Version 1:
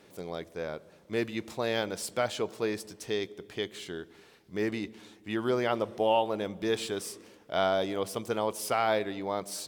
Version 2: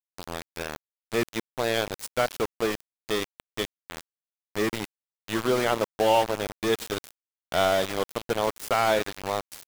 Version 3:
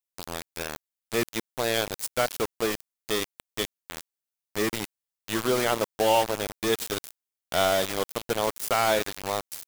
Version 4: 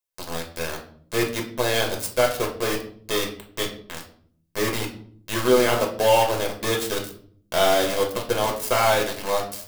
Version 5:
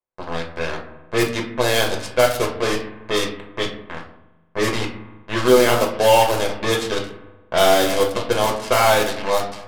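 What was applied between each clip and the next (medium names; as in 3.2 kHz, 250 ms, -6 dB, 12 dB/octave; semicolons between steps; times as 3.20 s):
small samples zeroed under -30 dBFS; trim +4.5 dB
treble shelf 5 kHz +8 dB; trim -1 dB
reverberation RT60 0.55 s, pre-delay 5 ms, DRR 0.5 dB
spring tank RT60 1.5 s, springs 42 ms, chirp 75 ms, DRR 15.5 dB; level-controlled noise filter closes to 790 Hz, open at -17.5 dBFS; tape noise reduction on one side only encoder only; trim +4 dB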